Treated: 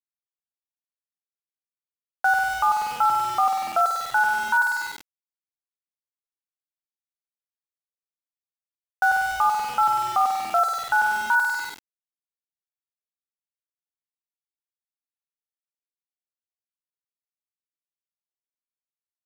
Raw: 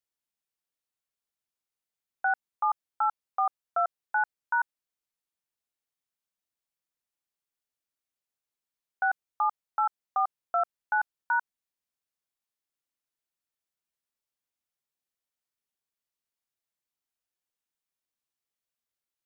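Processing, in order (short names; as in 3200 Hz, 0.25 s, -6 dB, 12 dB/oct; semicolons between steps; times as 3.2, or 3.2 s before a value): spring tank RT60 1.5 s, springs 48 ms, chirp 60 ms, DRR 3.5 dB; limiter -19.5 dBFS, peak gain reduction 4 dB; sample gate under -37.5 dBFS; gain +7.5 dB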